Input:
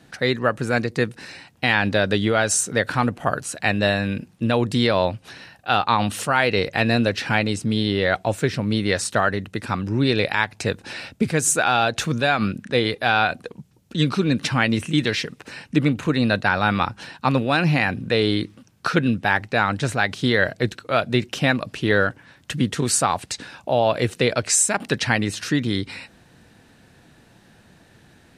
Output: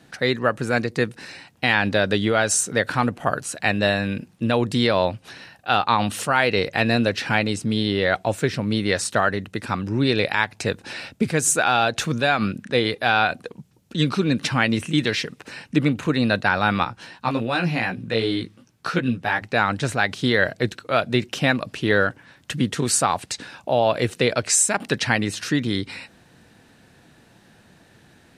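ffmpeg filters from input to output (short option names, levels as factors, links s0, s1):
-filter_complex "[0:a]asettb=1/sr,asplit=3[s0][s1][s2];[s0]atrim=end=16.844[s3];[s1]atrim=start=16.84:end=19.42,asetpts=PTS-STARTPTS,afade=t=in:d=0.004:c=qsin,afade=t=out:st=2.576:d=0.004:c=qsin,flanger=delay=16:depth=2:speed=2.7[s4];[s2]atrim=start=19.416[s5];[s3][s4]acrossfade=d=0.004:c1=hsin:c2=qsin[s6];[s6][s5]acrossfade=d=0.004:c1=qsin:c2=hsin,lowshelf=f=78:g=-5.5"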